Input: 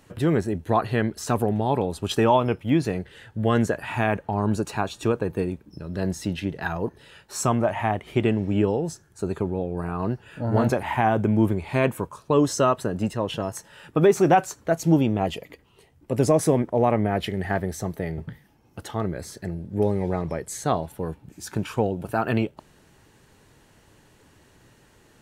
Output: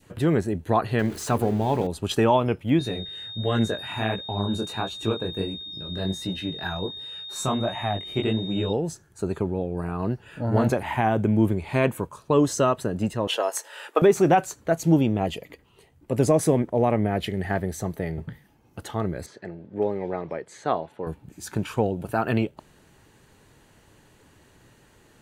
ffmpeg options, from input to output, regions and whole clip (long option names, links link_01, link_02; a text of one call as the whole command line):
ffmpeg -i in.wav -filter_complex "[0:a]asettb=1/sr,asplit=3[link_01][link_02][link_03];[link_01]atrim=end=0.994[link_04];[link_02]atrim=start=0.99:end=1.87,asetpts=PTS-STARTPTS,afade=type=in:duration=0.004:curve=qsin,afade=type=out:start_time=0.876:duration=0.004:curve=qsin,aeval=exprs='val(0)+0.5*0.0188*sgn(val(0))':channel_layout=same,equalizer=frequency=11000:width_type=o:width=1.6:gain=-3,bandreject=frequency=50:width_type=h:width=6,bandreject=frequency=100:width_type=h:width=6,bandreject=frequency=150:width_type=h:width=6,bandreject=frequency=200:width_type=h:width=6,bandreject=frequency=250:width_type=h:width=6,bandreject=frequency=300:width_type=h:width=6,bandreject=frequency=350:width_type=h:width=6,bandreject=frequency=400:width_type=h:width=6,bandreject=frequency=450:width_type=h:width=6,bandreject=frequency=500:width_type=h:width=6[link_05];[link_03]atrim=start=1.866[link_06];[link_04][link_05]acrossfade=duration=0.004:curve1=hsin:curve2=qsin[link_07];[link_07][link_06]acrossfade=duration=0.004:curve1=qsin:curve2=hsin,asettb=1/sr,asplit=3[link_08][link_09][link_10];[link_08]atrim=end=2.794[link_11];[link_09]atrim=start=2.79:end=8.73,asetpts=PTS-STARTPTS,afade=type=in:duration=0.004:curve=qsin,afade=type=out:start_time=5.936:duration=0.004:curve=qsin,flanger=delay=15.5:depth=7.2:speed=1.4,aeval=exprs='val(0)+0.0178*sin(2*PI*3700*n/s)':channel_layout=same[link_12];[link_10]atrim=start=8.726[link_13];[link_11][link_12]acrossfade=duration=0.004:curve1=hsin:curve2=qsin[link_14];[link_14][link_13]acrossfade=duration=0.004:curve1=qsin:curve2=hsin,asettb=1/sr,asplit=3[link_15][link_16][link_17];[link_15]atrim=end=13.274[link_18];[link_16]atrim=start=13.27:end=14.02,asetpts=PTS-STARTPTS,afade=type=in:duration=0.004:curve=qsin,afade=type=out:start_time=0.746:duration=0.004:curve=qsin,highpass=frequency=450:width=0.5412,highpass=frequency=450:width=1.3066,acontrast=80[link_19];[link_17]atrim=start=14.016[link_20];[link_18][link_19]acrossfade=duration=0.004:curve1=hsin:curve2=qsin[link_21];[link_21][link_20]acrossfade=duration=0.004:curve1=qsin:curve2=hsin,asettb=1/sr,asplit=3[link_22][link_23][link_24];[link_22]atrim=end=19.264[link_25];[link_23]atrim=start=19.26:end=21.07,asetpts=PTS-STARTPTS,afade=type=in:duration=0.004:curve=qsin,afade=type=out:start_time=1.806:duration=0.004:curve=qsin,highpass=110,lowpass=5700,bass=frequency=250:gain=-10,treble=frequency=4000:gain=-9[link_26];[link_24]atrim=start=21.066[link_27];[link_25][link_26]acrossfade=duration=0.004:curve1=hsin:curve2=qsin[link_28];[link_28][link_27]acrossfade=duration=0.004:curve1=qsin:curve2=hsin,bandreject=frequency=5400:width=13,adynamicequalizer=threshold=0.0141:dfrequency=1100:dqfactor=1:tfrequency=1100:tqfactor=1:attack=5:release=100:ratio=0.375:range=2:mode=cutabove:tftype=bell" out.wav